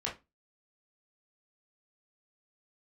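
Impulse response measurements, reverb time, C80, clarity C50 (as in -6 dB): 0.25 s, 20.0 dB, 10.5 dB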